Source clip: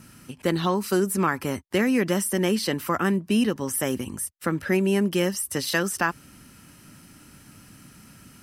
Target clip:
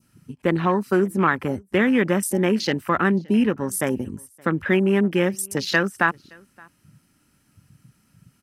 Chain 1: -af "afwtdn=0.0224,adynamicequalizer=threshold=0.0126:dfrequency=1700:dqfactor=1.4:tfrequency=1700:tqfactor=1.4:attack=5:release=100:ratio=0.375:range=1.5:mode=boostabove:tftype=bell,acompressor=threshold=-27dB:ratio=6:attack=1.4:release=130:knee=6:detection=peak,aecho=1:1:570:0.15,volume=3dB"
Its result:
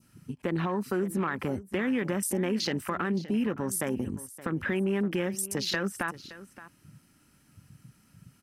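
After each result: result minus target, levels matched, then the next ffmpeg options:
compressor: peak gain reduction +14 dB; echo-to-direct +11 dB
-af "afwtdn=0.0224,adynamicequalizer=threshold=0.0126:dfrequency=1700:dqfactor=1.4:tfrequency=1700:tqfactor=1.4:attack=5:release=100:ratio=0.375:range=1.5:mode=boostabove:tftype=bell,aecho=1:1:570:0.15,volume=3dB"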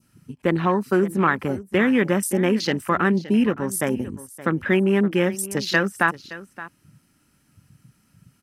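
echo-to-direct +11 dB
-af "afwtdn=0.0224,adynamicequalizer=threshold=0.0126:dfrequency=1700:dqfactor=1.4:tfrequency=1700:tqfactor=1.4:attack=5:release=100:ratio=0.375:range=1.5:mode=boostabove:tftype=bell,aecho=1:1:570:0.0422,volume=3dB"

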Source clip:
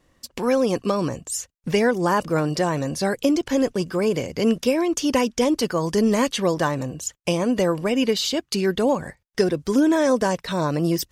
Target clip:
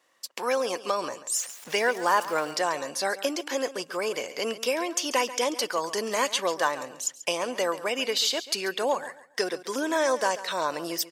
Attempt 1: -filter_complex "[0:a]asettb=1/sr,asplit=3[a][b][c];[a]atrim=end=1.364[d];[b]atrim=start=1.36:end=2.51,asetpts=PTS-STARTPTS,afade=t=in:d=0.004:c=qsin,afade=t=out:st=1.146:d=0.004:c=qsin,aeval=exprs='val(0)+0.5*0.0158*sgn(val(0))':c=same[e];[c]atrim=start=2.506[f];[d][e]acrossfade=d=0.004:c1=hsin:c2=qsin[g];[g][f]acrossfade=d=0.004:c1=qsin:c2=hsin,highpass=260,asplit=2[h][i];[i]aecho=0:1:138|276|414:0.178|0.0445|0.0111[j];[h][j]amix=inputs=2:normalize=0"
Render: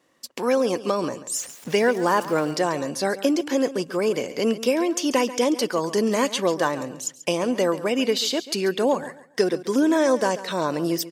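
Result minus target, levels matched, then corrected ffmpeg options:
250 Hz band +8.0 dB
-filter_complex "[0:a]asettb=1/sr,asplit=3[a][b][c];[a]atrim=end=1.364[d];[b]atrim=start=1.36:end=2.51,asetpts=PTS-STARTPTS,afade=t=in:d=0.004:c=qsin,afade=t=out:st=1.146:d=0.004:c=qsin,aeval=exprs='val(0)+0.5*0.0158*sgn(val(0))':c=same[e];[c]atrim=start=2.506[f];[d][e]acrossfade=d=0.004:c1=hsin:c2=qsin[g];[g][f]acrossfade=d=0.004:c1=qsin:c2=hsin,highpass=670,asplit=2[h][i];[i]aecho=0:1:138|276|414:0.178|0.0445|0.0111[j];[h][j]amix=inputs=2:normalize=0"

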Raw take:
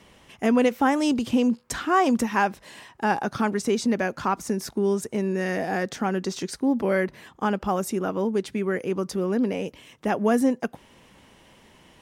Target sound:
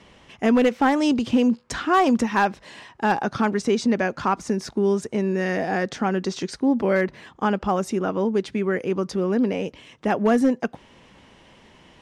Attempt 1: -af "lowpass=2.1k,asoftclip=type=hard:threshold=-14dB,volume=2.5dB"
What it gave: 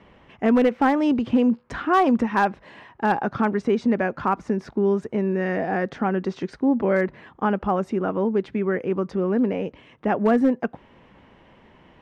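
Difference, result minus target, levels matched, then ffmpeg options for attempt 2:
8000 Hz band -15.0 dB
-af "lowpass=6.2k,asoftclip=type=hard:threshold=-14dB,volume=2.5dB"

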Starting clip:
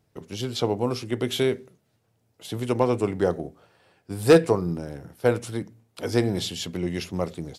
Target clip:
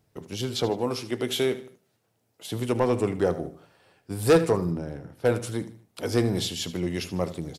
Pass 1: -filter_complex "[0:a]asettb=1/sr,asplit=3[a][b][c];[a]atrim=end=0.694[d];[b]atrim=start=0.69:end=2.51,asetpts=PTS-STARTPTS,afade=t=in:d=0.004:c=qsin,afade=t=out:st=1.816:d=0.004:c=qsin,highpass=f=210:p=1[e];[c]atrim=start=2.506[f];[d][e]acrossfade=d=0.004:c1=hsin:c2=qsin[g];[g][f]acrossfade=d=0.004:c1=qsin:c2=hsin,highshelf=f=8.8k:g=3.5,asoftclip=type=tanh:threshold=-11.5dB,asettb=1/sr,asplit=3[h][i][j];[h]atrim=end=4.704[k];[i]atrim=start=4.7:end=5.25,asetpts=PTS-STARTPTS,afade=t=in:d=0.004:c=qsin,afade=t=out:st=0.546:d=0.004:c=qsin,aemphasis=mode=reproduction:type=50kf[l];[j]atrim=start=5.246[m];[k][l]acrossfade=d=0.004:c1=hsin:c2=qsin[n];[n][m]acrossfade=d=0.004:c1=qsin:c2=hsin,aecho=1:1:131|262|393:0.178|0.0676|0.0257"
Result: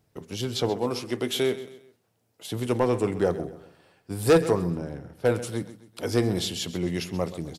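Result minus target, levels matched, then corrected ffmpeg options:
echo 54 ms late
-filter_complex "[0:a]asettb=1/sr,asplit=3[a][b][c];[a]atrim=end=0.694[d];[b]atrim=start=0.69:end=2.51,asetpts=PTS-STARTPTS,afade=t=in:d=0.004:c=qsin,afade=t=out:st=1.816:d=0.004:c=qsin,highpass=f=210:p=1[e];[c]atrim=start=2.506[f];[d][e]acrossfade=d=0.004:c1=hsin:c2=qsin[g];[g][f]acrossfade=d=0.004:c1=qsin:c2=hsin,highshelf=f=8.8k:g=3.5,asoftclip=type=tanh:threshold=-11.5dB,asettb=1/sr,asplit=3[h][i][j];[h]atrim=end=4.704[k];[i]atrim=start=4.7:end=5.25,asetpts=PTS-STARTPTS,afade=t=in:d=0.004:c=qsin,afade=t=out:st=0.546:d=0.004:c=qsin,aemphasis=mode=reproduction:type=50kf[l];[j]atrim=start=5.246[m];[k][l]acrossfade=d=0.004:c1=hsin:c2=qsin[n];[n][m]acrossfade=d=0.004:c1=qsin:c2=hsin,aecho=1:1:77|154|231:0.178|0.0676|0.0257"

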